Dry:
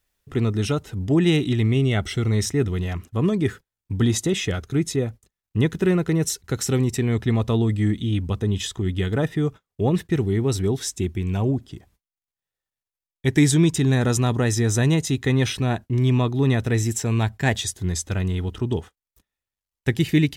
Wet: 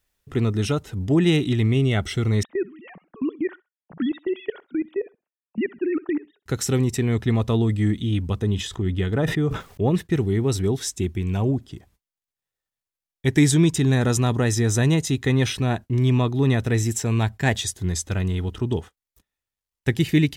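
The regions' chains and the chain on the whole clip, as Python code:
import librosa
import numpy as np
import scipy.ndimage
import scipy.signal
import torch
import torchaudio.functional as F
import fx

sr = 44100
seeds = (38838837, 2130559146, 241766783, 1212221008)

y = fx.chain(x, sr, fx.sine_speech(),
    fx.level_steps(step_db=22),
    fx.echo_feedback(ms=64, feedback_pct=24, wet_db=-23.0), at=(2.43, 6.46))
y = fx.chain(y, sr, fx.high_shelf(hz=3800.0, db=-6.5),
    fx.sustainer(db_per_s=87.0), at=(8.55, 9.9))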